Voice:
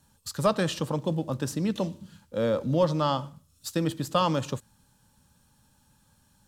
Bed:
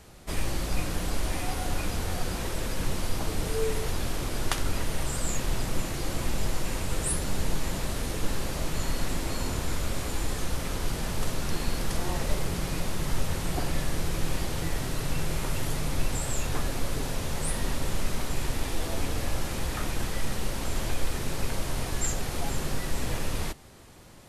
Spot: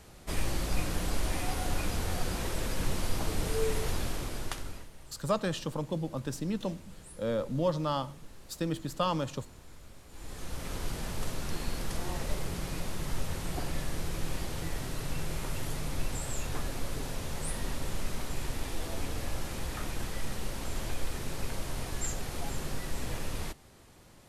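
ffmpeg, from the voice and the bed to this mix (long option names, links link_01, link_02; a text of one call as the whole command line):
ffmpeg -i stem1.wav -i stem2.wav -filter_complex "[0:a]adelay=4850,volume=-5.5dB[link_01];[1:a]volume=14.5dB,afade=type=out:start_time=3.92:duration=0.98:silence=0.1,afade=type=in:start_time=10.09:duration=0.66:silence=0.149624[link_02];[link_01][link_02]amix=inputs=2:normalize=0" out.wav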